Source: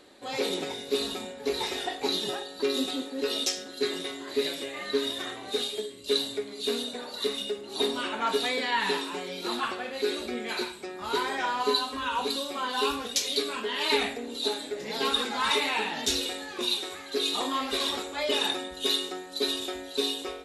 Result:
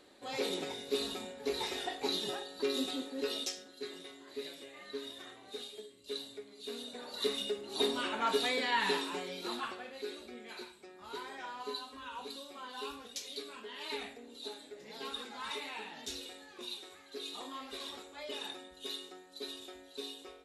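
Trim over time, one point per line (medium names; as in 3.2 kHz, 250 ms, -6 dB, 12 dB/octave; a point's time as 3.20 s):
3.23 s -6 dB
3.78 s -14.5 dB
6.66 s -14.5 dB
7.23 s -4 dB
9.15 s -4 dB
10.24 s -15 dB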